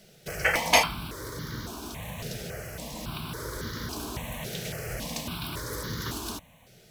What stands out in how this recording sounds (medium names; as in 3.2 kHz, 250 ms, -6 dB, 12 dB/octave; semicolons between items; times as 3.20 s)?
notches that jump at a steady rate 3.6 Hz 280–2600 Hz